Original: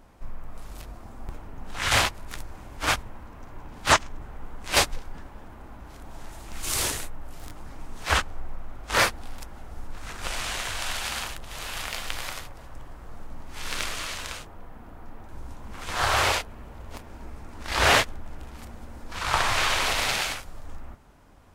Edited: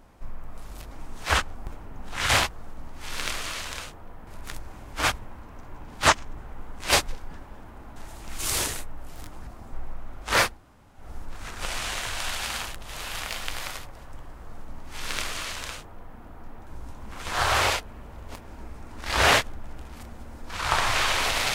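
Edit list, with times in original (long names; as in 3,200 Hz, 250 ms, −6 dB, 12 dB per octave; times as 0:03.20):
0:00.91–0:01.17: swap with 0:07.71–0:08.35
0:05.80–0:06.20: remove
0:09.15–0:09.62: fill with room tone, crossfade 0.16 s
0:13.02–0:14.80: duplicate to 0:02.11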